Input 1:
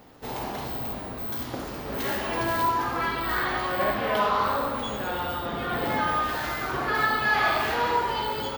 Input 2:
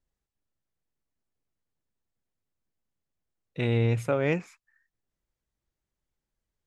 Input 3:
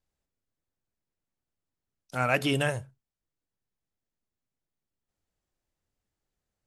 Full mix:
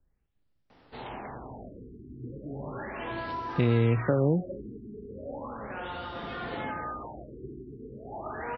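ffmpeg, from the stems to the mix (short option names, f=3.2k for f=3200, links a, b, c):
-filter_complex "[0:a]highshelf=f=6.6k:g=-9,adelay=700,volume=-7.5dB[a];[1:a]lowshelf=f=470:g=11.5,volume=0.5dB[b];[2:a]lowshelf=f=350:g=9.5,volume=-18.5dB[c];[a][b][c]amix=inputs=3:normalize=0,equalizer=f=3k:t=o:w=2.4:g=4.5,acrossover=split=210|620[d][e][f];[d]acompressor=threshold=-28dB:ratio=4[g];[e]acompressor=threshold=-25dB:ratio=4[h];[f]acompressor=threshold=-36dB:ratio=4[i];[g][h][i]amix=inputs=3:normalize=0,afftfilt=real='re*lt(b*sr/1024,420*pow(6000/420,0.5+0.5*sin(2*PI*0.36*pts/sr)))':imag='im*lt(b*sr/1024,420*pow(6000/420,0.5+0.5*sin(2*PI*0.36*pts/sr)))':win_size=1024:overlap=0.75"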